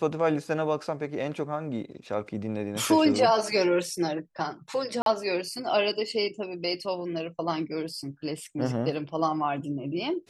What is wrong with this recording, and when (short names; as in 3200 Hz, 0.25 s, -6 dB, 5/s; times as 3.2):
5.02–5.06 gap 42 ms